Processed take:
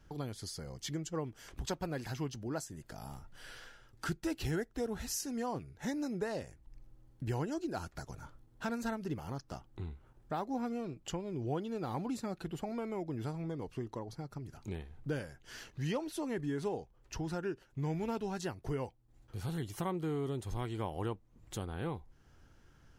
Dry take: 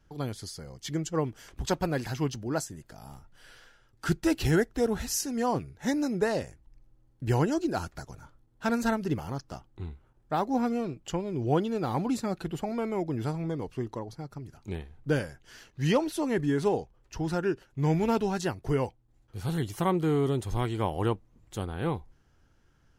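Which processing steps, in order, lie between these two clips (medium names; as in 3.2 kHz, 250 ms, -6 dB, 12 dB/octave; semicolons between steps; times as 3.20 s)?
compression 2:1, threshold -47 dBFS, peak gain reduction 15 dB; trim +3 dB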